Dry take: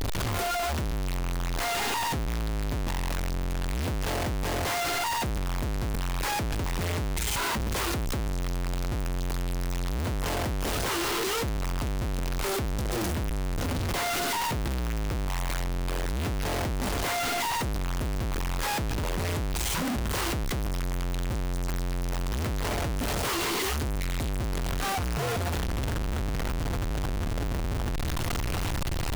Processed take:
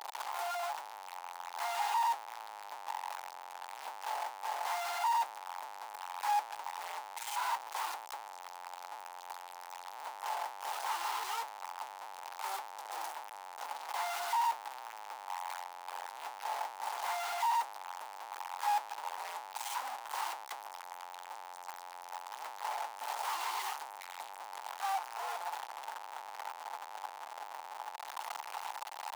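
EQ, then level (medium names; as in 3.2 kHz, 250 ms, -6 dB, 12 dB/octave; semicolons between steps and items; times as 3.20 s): ladder high-pass 800 Hz, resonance 75%; 0.0 dB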